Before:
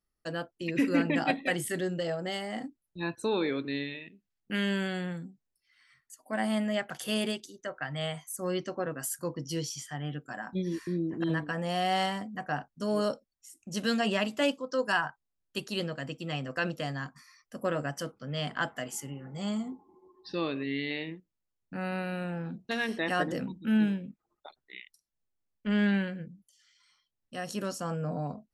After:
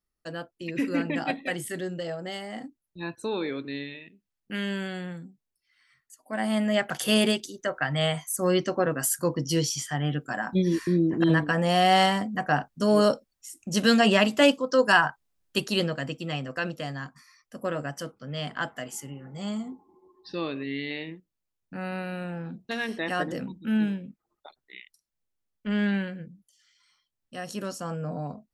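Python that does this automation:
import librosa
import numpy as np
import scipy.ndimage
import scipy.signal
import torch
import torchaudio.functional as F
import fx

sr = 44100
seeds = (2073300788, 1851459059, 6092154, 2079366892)

y = fx.gain(x, sr, db=fx.line((6.2, -1.0), (6.93, 8.5), (15.64, 8.5), (16.65, 0.5)))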